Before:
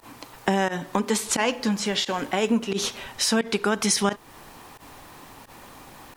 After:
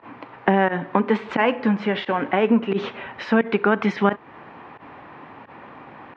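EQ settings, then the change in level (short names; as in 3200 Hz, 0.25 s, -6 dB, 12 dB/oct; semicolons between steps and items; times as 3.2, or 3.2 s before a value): HPF 130 Hz 12 dB/oct; LPF 2400 Hz 24 dB/oct; +5.0 dB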